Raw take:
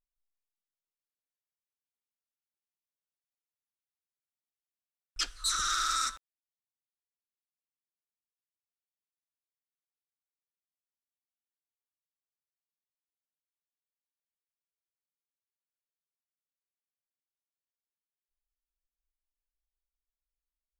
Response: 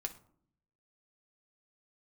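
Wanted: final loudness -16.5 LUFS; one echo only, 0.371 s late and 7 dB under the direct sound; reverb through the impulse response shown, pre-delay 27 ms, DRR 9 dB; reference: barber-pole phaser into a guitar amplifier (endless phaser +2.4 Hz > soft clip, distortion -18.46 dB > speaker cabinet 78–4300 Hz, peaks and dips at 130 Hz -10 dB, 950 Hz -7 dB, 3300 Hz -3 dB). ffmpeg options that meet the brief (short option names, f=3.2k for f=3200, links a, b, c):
-filter_complex "[0:a]aecho=1:1:371:0.447,asplit=2[a][b];[1:a]atrim=start_sample=2205,adelay=27[c];[b][c]afir=irnorm=-1:irlink=0,volume=-8dB[d];[a][d]amix=inputs=2:normalize=0,asplit=2[e][f];[f]afreqshift=2.4[g];[e][g]amix=inputs=2:normalize=1,asoftclip=threshold=-24.5dB,highpass=78,equalizer=f=130:t=q:w=4:g=-10,equalizer=f=950:t=q:w=4:g=-7,equalizer=f=3.3k:t=q:w=4:g=-3,lowpass=f=4.3k:w=0.5412,lowpass=f=4.3k:w=1.3066,volume=21dB"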